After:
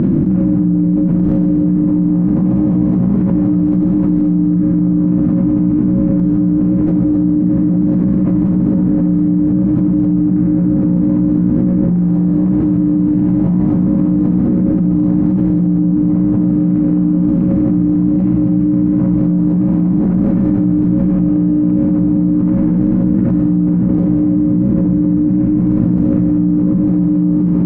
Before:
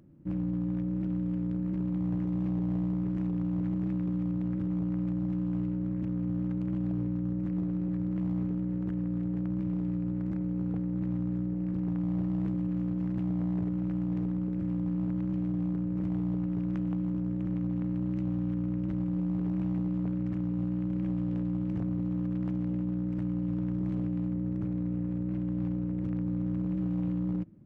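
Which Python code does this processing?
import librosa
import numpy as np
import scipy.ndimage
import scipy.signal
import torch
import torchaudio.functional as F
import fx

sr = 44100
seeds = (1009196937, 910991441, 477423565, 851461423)

y = scipy.signal.sosfilt(scipy.signal.butter(2, 1800.0, 'lowpass', fs=sr, output='sos'), x)
y = fx.peak_eq(y, sr, hz=220.0, db=12.5, octaves=1.3)
y = fx.chopper(y, sr, hz=3.8, depth_pct=60, duty_pct=55)
y = fx.rev_schroeder(y, sr, rt60_s=2.1, comb_ms=31, drr_db=-8.5)
y = fx.env_flatten(y, sr, amount_pct=100)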